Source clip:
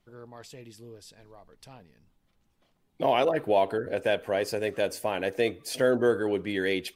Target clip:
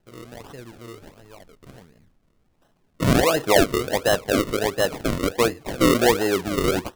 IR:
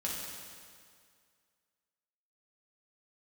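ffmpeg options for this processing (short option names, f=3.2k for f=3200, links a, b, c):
-af "acrusher=samples=37:mix=1:aa=0.000001:lfo=1:lforange=37:lforate=1.4,volume=6dB"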